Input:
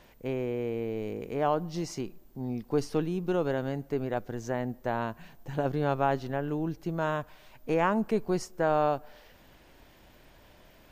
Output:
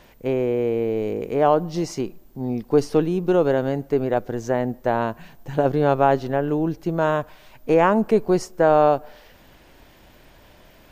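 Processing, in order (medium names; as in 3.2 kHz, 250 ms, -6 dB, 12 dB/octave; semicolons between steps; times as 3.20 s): dynamic bell 490 Hz, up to +5 dB, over -40 dBFS, Q 0.76; trim +6 dB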